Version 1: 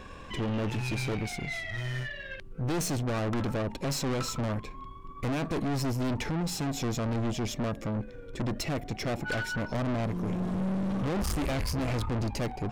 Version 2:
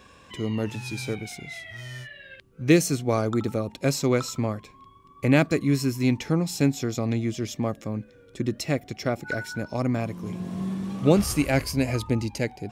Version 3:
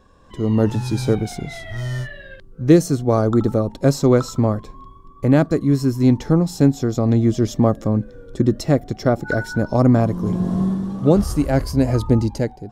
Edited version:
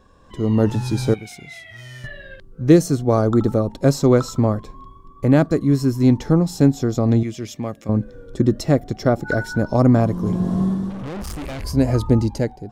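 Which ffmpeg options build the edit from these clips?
-filter_complex "[1:a]asplit=2[a][b];[2:a]asplit=4[c][d][e][f];[c]atrim=end=1.142[g];[a]atrim=start=1.138:end=2.042[h];[d]atrim=start=2.038:end=7.232[i];[b]atrim=start=7.228:end=7.892[j];[e]atrim=start=7.888:end=10.902[k];[0:a]atrim=start=10.898:end=11.642[l];[f]atrim=start=11.638[m];[g][h]acrossfade=d=0.004:c1=hsin:c2=hsin[n];[n][i]acrossfade=d=0.004:c1=hsin:c2=hsin[o];[o][j]acrossfade=d=0.004:c1=hsin:c2=hsin[p];[p][k]acrossfade=d=0.004:c1=hsin:c2=hsin[q];[q][l]acrossfade=d=0.004:c1=hsin:c2=hsin[r];[r][m]acrossfade=d=0.004:c1=hsin:c2=hsin"

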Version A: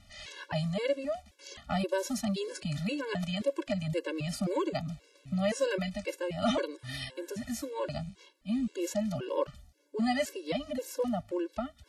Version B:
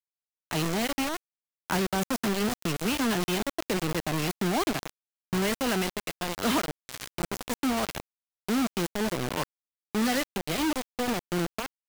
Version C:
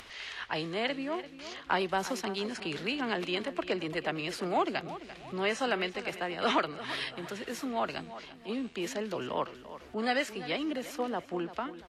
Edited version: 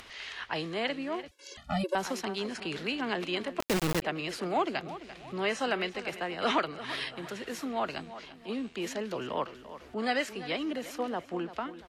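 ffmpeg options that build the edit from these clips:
-filter_complex "[2:a]asplit=3[a][b][c];[a]atrim=end=1.282[d];[0:a]atrim=start=1.278:end=1.952[e];[b]atrim=start=1.948:end=3.602[f];[1:a]atrim=start=3.598:end=4.022[g];[c]atrim=start=4.018[h];[d][e]acrossfade=d=0.004:c1=hsin:c2=hsin[i];[i][f]acrossfade=d=0.004:c1=hsin:c2=hsin[j];[j][g]acrossfade=d=0.004:c1=hsin:c2=hsin[k];[k][h]acrossfade=d=0.004:c1=hsin:c2=hsin"

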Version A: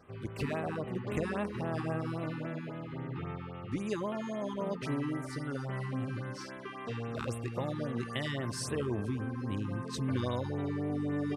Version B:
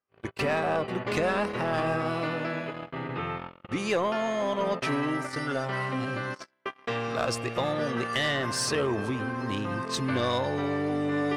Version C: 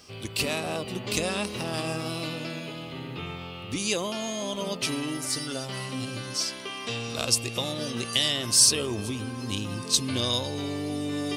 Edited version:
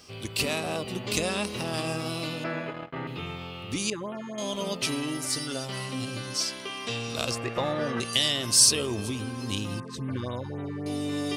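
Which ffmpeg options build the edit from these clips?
-filter_complex "[1:a]asplit=2[a][b];[0:a]asplit=2[c][d];[2:a]asplit=5[e][f][g][h][i];[e]atrim=end=2.442[j];[a]atrim=start=2.438:end=3.072[k];[f]atrim=start=3.068:end=3.902[l];[c]atrim=start=3.898:end=4.382[m];[g]atrim=start=4.378:end=7.312[n];[b]atrim=start=7.308:end=8.002[o];[h]atrim=start=7.998:end=9.802[p];[d]atrim=start=9.798:end=10.862[q];[i]atrim=start=10.858[r];[j][k]acrossfade=d=0.004:c1=hsin:c2=hsin[s];[s][l]acrossfade=d=0.004:c1=hsin:c2=hsin[t];[t][m]acrossfade=d=0.004:c1=hsin:c2=hsin[u];[u][n]acrossfade=d=0.004:c1=hsin:c2=hsin[v];[v][o]acrossfade=d=0.004:c1=hsin:c2=hsin[w];[w][p]acrossfade=d=0.004:c1=hsin:c2=hsin[x];[x][q]acrossfade=d=0.004:c1=hsin:c2=hsin[y];[y][r]acrossfade=d=0.004:c1=hsin:c2=hsin"

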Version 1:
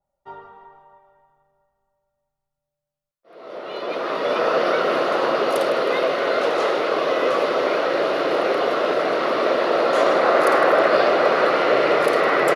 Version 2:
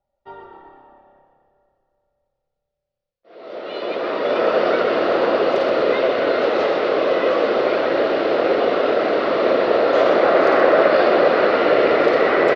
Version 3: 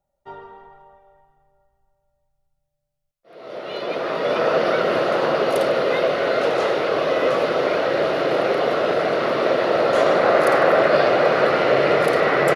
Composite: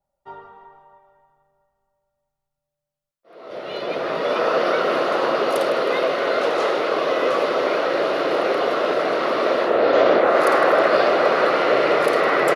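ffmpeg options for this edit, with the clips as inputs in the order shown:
-filter_complex "[0:a]asplit=3[a][b][c];[a]atrim=end=3.512[d];[2:a]atrim=start=3.508:end=4.212[e];[b]atrim=start=4.208:end=9.85[f];[1:a]atrim=start=9.61:end=10.39[g];[c]atrim=start=10.15[h];[d][e]acrossfade=d=0.004:c1=hsin:c2=hsin[i];[i][f]acrossfade=d=0.004:c1=hsin:c2=hsin[j];[j][g]acrossfade=d=0.24:c1=tri:c2=tri[k];[k][h]acrossfade=d=0.24:c1=tri:c2=tri"

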